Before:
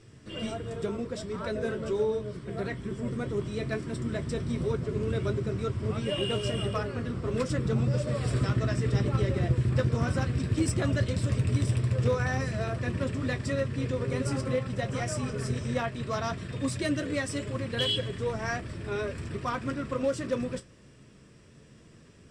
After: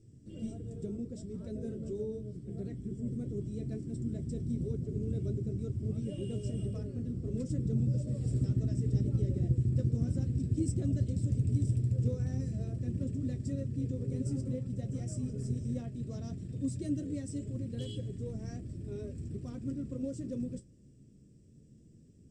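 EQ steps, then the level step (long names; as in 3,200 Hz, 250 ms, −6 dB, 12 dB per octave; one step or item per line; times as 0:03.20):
drawn EQ curve 280 Hz 0 dB, 640 Hz −15 dB, 1,000 Hz −29 dB, 1,400 Hz −27 dB, 2,700 Hz −21 dB, 3,900 Hz −18 dB, 7,700 Hz −5 dB, 11,000 Hz −15 dB
−3.0 dB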